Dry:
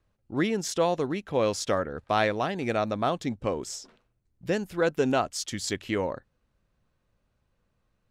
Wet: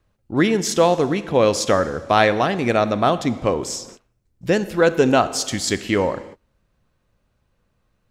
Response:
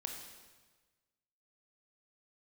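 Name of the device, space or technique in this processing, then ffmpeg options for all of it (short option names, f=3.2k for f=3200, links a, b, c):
keyed gated reverb: -filter_complex "[0:a]asplit=3[a][b][c];[1:a]atrim=start_sample=2205[d];[b][d]afir=irnorm=-1:irlink=0[e];[c]apad=whole_len=357378[f];[e][f]sidechaingate=range=-33dB:threshold=-55dB:ratio=16:detection=peak,volume=-5dB[g];[a][g]amix=inputs=2:normalize=0,volume=6dB"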